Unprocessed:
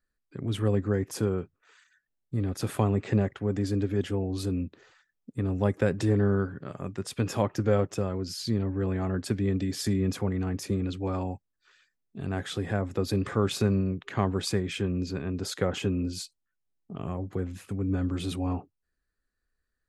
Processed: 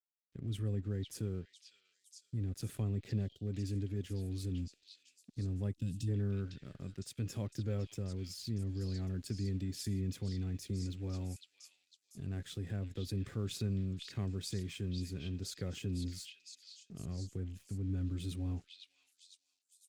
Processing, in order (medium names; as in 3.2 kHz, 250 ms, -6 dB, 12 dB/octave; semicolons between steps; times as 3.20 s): crossover distortion -50 dBFS; on a send: repeats whose band climbs or falls 506 ms, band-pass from 3.4 kHz, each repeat 0.7 oct, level -2 dB; on the sum: time-frequency box 5.75–6.08 s, 310–2500 Hz -18 dB; amplifier tone stack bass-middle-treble 10-0-1; time-frequency box 3.27–3.47 s, 740–2800 Hz -21 dB; bass shelf 280 Hz -7 dB; in parallel at +1 dB: peak limiter -44.5 dBFS, peak gain reduction 11 dB; on the sum: trim +6 dB